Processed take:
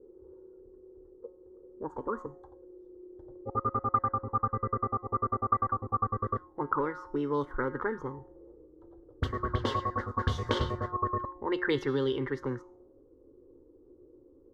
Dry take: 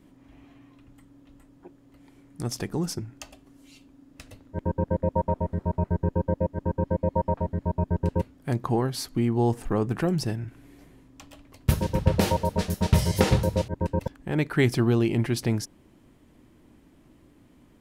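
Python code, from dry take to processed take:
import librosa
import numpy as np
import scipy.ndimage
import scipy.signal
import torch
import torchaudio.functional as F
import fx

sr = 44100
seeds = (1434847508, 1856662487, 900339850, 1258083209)

y = fx.speed_glide(x, sr, from_pct=134, to_pct=111)
y = fx.fixed_phaser(y, sr, hz=670.0, stages=6)
y = fx.comb_fb(y, sr, f0_hz=180.0, decay_s=0.93, harmonics='all', damping=0.0, mix_pct=70)
y = fx.envelope_lowpass(y, sr, base_hz=480.0, top_hz=3200.0, q=5.3, full_db=-31.5, direction='up')
y = F.gain(torch.from_numpy(y), 5.5).numpy()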